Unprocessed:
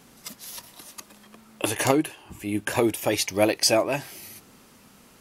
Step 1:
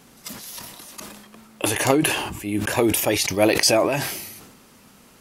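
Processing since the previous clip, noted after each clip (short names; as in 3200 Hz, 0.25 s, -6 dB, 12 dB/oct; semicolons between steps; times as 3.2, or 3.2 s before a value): sustainer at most 47 dB/s; gain +2 dB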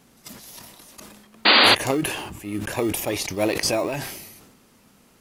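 in parallel at -12 dB: sample-and-hold 28×; on the sum: painted sound noise, 1.45–1.75, 200–4800 Hz -8 dBFS; gain -6 dB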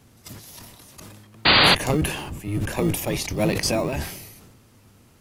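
octaver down 1 oct, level +4 dB; gain -1 dB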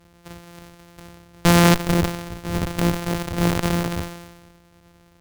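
sample sorter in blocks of 256 samples; added harmonics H 8 -12 dB, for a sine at -2.5 dBFS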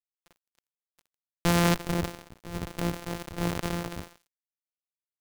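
crossover distortion -31.5 dBFS; gain -8 dB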